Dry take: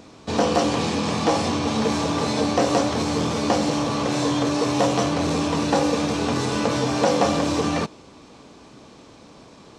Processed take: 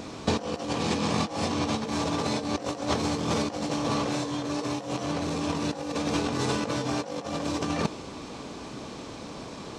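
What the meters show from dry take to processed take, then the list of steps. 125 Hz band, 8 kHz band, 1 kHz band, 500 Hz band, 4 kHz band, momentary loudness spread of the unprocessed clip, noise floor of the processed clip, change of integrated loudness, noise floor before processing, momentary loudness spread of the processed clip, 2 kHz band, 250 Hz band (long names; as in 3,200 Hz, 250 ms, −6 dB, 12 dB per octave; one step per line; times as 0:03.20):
−5.5 dB, −6.5 dB, −7.5 dB, −8.5 dB, −6.0 dB, 3 LU, −40 dBFS, −7.5 dB, −47 dBFS, 12 LU, −6.0 dB, −6.5 dB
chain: compressor whose output falls as the input rises −27 dBFS, ratio −0.5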